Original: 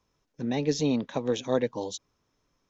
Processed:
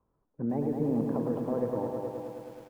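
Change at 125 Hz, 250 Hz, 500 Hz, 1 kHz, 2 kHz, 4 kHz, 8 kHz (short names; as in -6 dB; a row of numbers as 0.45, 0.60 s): -0.5 dB, -0.5 dB, -2.5 dB, -1.0 dB, under -10 dB, under -25 dB, n/a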